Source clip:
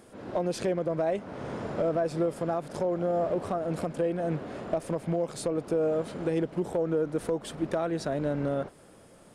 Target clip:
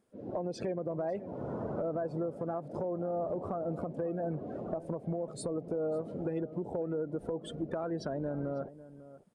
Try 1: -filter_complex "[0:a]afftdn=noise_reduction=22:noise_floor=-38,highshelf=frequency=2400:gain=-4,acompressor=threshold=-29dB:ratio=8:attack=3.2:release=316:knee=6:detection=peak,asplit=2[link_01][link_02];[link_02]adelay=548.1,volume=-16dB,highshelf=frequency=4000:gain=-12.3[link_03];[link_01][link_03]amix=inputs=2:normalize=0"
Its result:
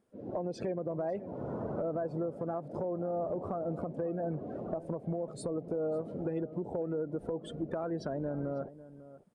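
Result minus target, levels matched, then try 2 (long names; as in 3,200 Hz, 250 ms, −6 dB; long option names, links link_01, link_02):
4,000 Hz band −3.0 dB
-filter_complex "[0:a]afftdn=noise_reduction=22:noise_floor=-38,acompressor=threshold=-29dB:ratio=8:attack=3.2:release=316:knee=6:detection=peak,asplit=2[link_01][link_02];[link_02]adelay=548.1,volume=-16dB,highshelf=frequency=4000:gain=-12.3[link_03];[link_01][link_03]amix=inputs=2:normalize=0"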